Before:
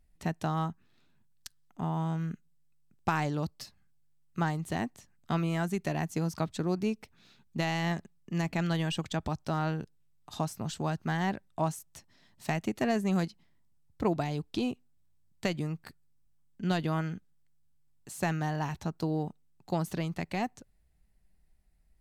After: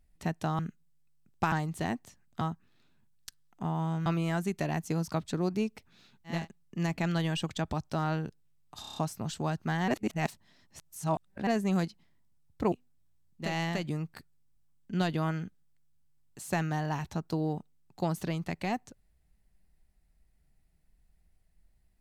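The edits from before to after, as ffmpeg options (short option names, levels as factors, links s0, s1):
-filter_complex "[0:a]asplit=16[s0][s1][s2][s3][s4][s5][s6][s7][s8][s9][s10][s11][s12][s13][s14][s15];[s0]atrim=end=0.592[s16];[s1]atrim=start=2.238:end=3.172[s17];[s2]atrim=start=4.428:end=5.322[s18];[s3]atrim=start=0.588:end=2.242[s19];[s4]atrim=start=5.318:end=7.74[s20];[s5]atrim=start=7.79:end=10.392[s21];[s6]atrim=start=10.358:end=10.392[s22];[s7]atrim=start=10.358:end=10.392[s23];[s8]atrim=start=10.358:end=10.392[s24];[s9]atrim=start=10.358:end=10.392[s25];[s10]atrim=start=10.358:end=11.282[s26];[s11]atrim=start=11.278:end=12.872,asetpts=PTS-STARTPTS,areverse[s27];[s12]atrim=start=12.868:end=14.122[s28];[s13]atrim=start=14.708:end=15.57[s29];[s14]atrim=start=7.5:end=8.03[s30];[s15]atrim=start=15.33[s31];[s16][s17]acrossfade=d=0.004:c1=hsin:c2=hsin[s32];[s32][s18]acrossfade=d=0.004:c1=hsin:c2=hsin[s33];[s33][s19]acrossfade=d=0.004:c1=hsin:c2=hsin[s34];[s34][s20]acrossfade=d=0.004:c1=hsin:c2=hsin[s35];[s35][s21]acrossfade=d=0.24:c1=tri:c2=tri[s36];[s36][s22]acrossfade=d=0.004:c1=hsin:c2=hsin[s37];[s37][s23]acrossfade=d=0.004:c1=hsin:c2=hsin[s38];[s38][s24]acrossfade=d=0.004:c1=hsin:c2=hsin[s39];[s39][s25]acrossfade=d=0.004:c1=hsin:c2=hsin[s40];[s40][s26]acrossfade=d=0.004:c1=hsin:c2=hsin[s41];[s41][s27]acrossfade=d=0.004:c1=hsin:c2=hsin[s42];[s42][s28]acrossfade=d=0.004:c1=hsin:c2=hsin[s43];[s43][s29]acrossfade=d=0.004:c1=hsin:c2=hsin[s44];[s44][s30]acrossfade=d=0.24:c1=tri:c2=tri[s45];[s45][s31]acrossfade=d=0.24:c1=tri:c2=tri"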